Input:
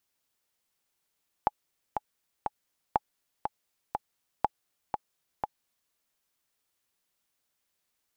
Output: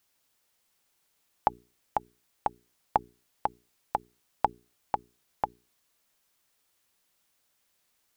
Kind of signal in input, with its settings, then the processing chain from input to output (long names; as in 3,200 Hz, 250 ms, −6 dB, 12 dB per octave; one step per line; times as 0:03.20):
click track 121 BPM, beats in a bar 3, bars 3, 844 Hz, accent 6 dB −10 dBFS
mains-hum notches 60/120/180/240/300/360/420 Hz
in parallel at +1 dB: brickwall limiter −20 dBFS